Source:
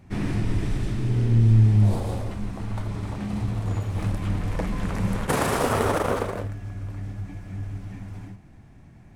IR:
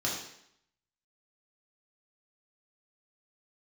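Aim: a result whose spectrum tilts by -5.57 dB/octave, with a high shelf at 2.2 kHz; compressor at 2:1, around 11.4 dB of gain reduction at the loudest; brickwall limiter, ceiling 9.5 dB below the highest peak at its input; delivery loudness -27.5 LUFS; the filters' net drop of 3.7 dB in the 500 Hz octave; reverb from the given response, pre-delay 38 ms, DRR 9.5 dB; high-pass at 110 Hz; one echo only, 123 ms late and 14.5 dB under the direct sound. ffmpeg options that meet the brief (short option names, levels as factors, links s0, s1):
-filter_complex "[0:a]highpass=110,equalizer=f=500:t=o:g=-5,highshelf=f=2200:g=7,acompressor=threshold=0.0126:ratio=2,alimiter=level_in=1.41:limit=0.0631:level=0:latency=1,volume=0.708,aecho=1:1:123:0.188,asplit=2[s0][s1];[1:a]atrim=start_sample=2205,adelay=38[s2];[s1][s2]afir=irnorm=-1:irlink=0,volume=0.15[s3];[s0][s3]amix=inputs=2:normalize=0,volume=2.99"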